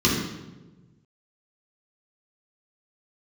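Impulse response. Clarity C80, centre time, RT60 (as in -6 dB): 4.5 dB, 59 ms, 1.2 s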